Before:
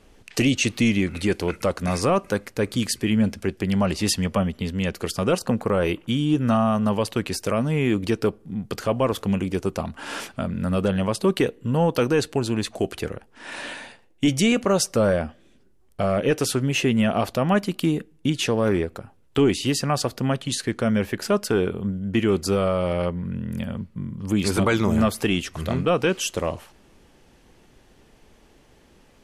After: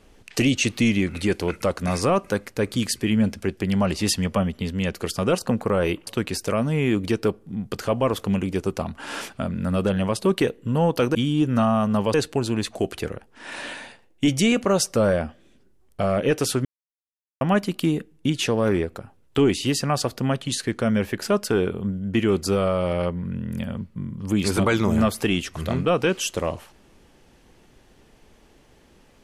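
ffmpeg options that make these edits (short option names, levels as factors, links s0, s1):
-filter_complex "[0:a]asplit=6[s0][s1][s2][s3][s4][s5];[s0]atrim=end=6.072[s6];[s1]atrim=start=7.058:end=12.142[s7];[s2]atrim=start=6.068:end=7.062[s8];[s3]atrim=start=12.138:end=16.65,asetpts=PTS-STARTPTS,afade=t=out:st=4.508:d=0.004:c=hsin[s9];[s4]atrim=start=16.65:end=17.41,asetpts=PTS-STARTPTS,volume=0[s10];[s5]atrim=start=17.41,asetpts=PTS-STARTPTS,afade=t=in:d=0.004:c=hsin[s11];[s6][s7]acrossfade=d=0.004:c1=hsin:c2=hsin[s12];[s12][s8]acrossfade=d=0.004:c1=hsin:c2=hsin[s13];[s9][s10][s11]concat=n=3:v=0:a=1[s14];[s13][s14]acrossfade=d=0.004:c1=hsin:c2=hsin"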